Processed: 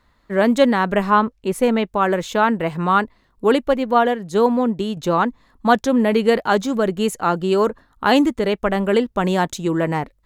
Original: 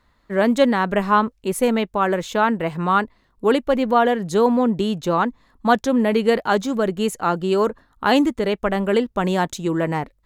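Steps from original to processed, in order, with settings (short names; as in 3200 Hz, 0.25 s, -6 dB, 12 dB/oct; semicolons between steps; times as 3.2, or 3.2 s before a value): 1.1–1.86 high shelf 5800 Hz -7.5 dB; 3.73–4.97 upward expander 1.5:1, over -26 dBFS; gain +1.5 dB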